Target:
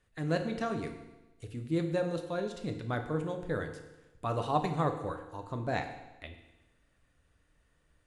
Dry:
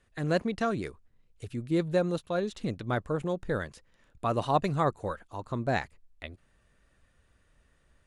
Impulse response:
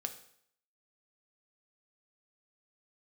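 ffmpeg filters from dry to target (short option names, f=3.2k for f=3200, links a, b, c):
-filter_complex "[1:a]atrim=start_sample=2205,asetrate=26901,aresample=44100[a];[0:a][a]afir=irnorm=-1:irlink=0,volume=-5.5dB"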